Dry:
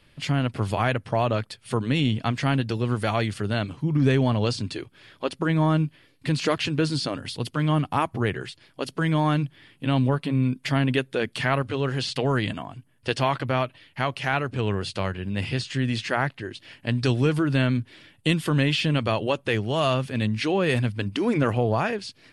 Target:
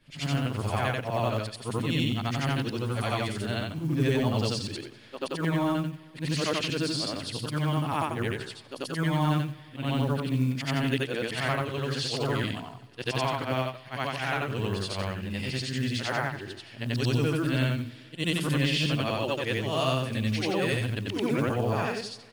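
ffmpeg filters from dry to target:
ffmpeg -i in.wav -af "afftfilt=real='re':imag='-im':win_size=8192:overlap=0.75,acrusher=bits=9:mode=log:mix=0:aa=0.000001,aecho=1:1:195|390|585|780:0.0668|0.0388|0.0225|0.013,adynamicequalizer=threshold=0.00501:dfrequency=3100:dqfactor=0.7:tfrequency=3100:tqfactor=0.7:attack=5:release=100:ratio=0.375:range=2.5:mode=boostabove:tftype=highshelf" out.wav

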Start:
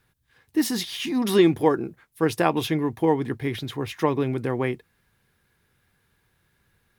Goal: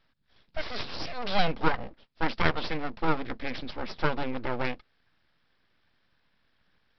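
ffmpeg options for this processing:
ffmpeg -i in.wav -af "equalizer=frequency=270:width_type=o:width=0.67:gain=-12,aresample=11025,aeval=exprs='abs(val(0))':channel_layout=same,aresample=44100" out.wav

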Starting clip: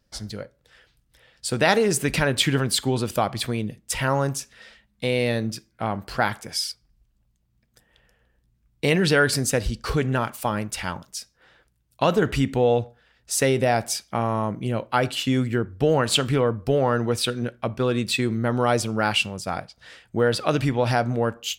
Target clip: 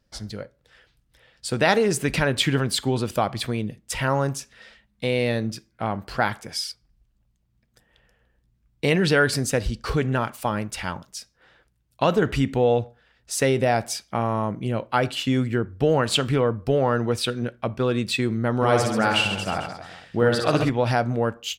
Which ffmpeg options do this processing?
ffmpeg -i in.wav -filter_complex "[0:a]highshelf=frequency=6500:gain=-5.5,asplit=3[link_01][link_02][link_03];[link_01]afade=type=out:start_time=18.61:duration=0.02[link_04];[link_02]aecho=1:1:60|132|218.4|322.1|446.5:0.631|0.398|0.251|0.158|0.1,afade=type=in:start_time=18.61:duration=0.02,afade=type=out:start_time=20.68:duration=0.02[link_05];[link_03]afade=type=in:start_time=20.68:duration=0.02[link_06];[link_04][link_05][link_06]amix=inputs=3:normalize=0" out.wav

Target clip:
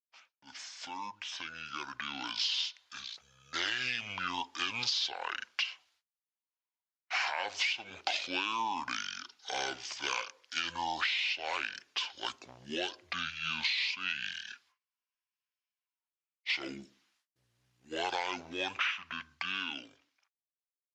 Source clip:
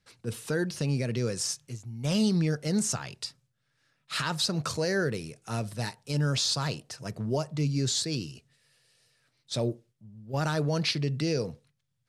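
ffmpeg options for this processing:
ffmpeg -i in.wav -af "agate=range=-39dB:threshold=-57dB:ratio=16:detection=peak,dynaudnorm=framelen=220:gausssize=11:maxgain=12dB,asetrate=25442,aresample=44100,highpass=920,acompressor=threshold=-26dB:ratio=16,volume=-3dB" out.wav

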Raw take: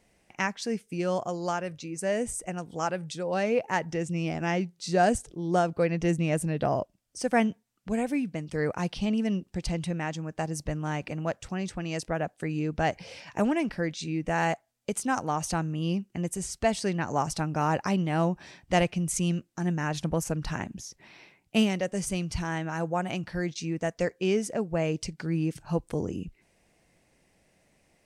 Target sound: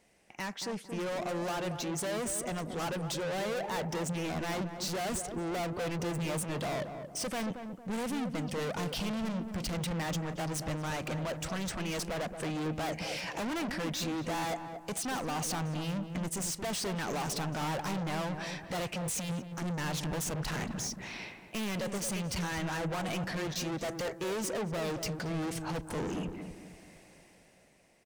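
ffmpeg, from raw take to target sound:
ffmpeg -i in.wav -filter_complex "[0:a]lowshelf=frequency=150:gain=-8.5,dynaudnorm=framelen=190:gausssize=11:maxgain=11.5dB,asoftclip=type=tanh:threshold=-33.5dB,asplit=2[link_01][link_02];[link_02]adelay=227,lowpass=frequency=1100:poles=1,volume=-6.5dB,asplit=2[link_03][link_04];[link_04]adelay=227,lowpass=frequency=1100:poles=1,volume=0.44,asplit=2[link_05][link_06];[link_06]adelay=227,lowpass=frequency=1100:poles=1,volume=0.44,asplit=2[link_07][link_08];[link_08]adelay=227,lowpass=frequency=1100:poles=1,volume=0.44,asplit=2[link_09][link_10];[link_10]adelay=227,lowpass=frequency=1100:poles=1,volume=0.44[link_11];[link_01][link_03][link_05][link_07][link_09][link_11]amix=inputs=6:normalize=0" out.wav

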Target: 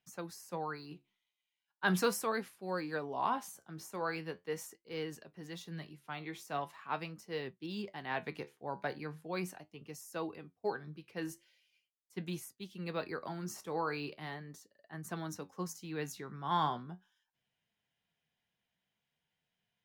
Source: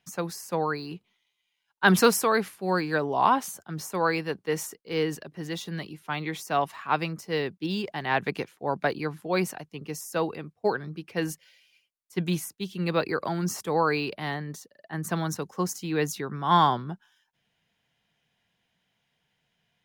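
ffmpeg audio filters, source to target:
ffmpeg -i in.wav -af "flanger=delay=7.6:depth=8.1:regen=65:speed=0.4:shape=triangular,volume=-7.5dB" out.wav

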